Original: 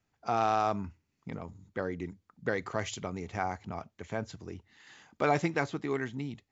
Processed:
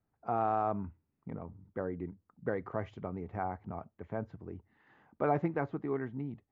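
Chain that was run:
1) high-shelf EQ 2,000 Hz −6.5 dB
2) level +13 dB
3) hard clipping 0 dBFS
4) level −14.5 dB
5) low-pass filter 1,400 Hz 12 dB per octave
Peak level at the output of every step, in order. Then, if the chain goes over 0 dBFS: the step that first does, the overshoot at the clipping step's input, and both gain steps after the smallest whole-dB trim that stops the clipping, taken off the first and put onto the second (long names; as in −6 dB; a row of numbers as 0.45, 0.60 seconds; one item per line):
−15.0, −2.0, −2.0, −16.5, −17.5 dBFS
no step passes full scale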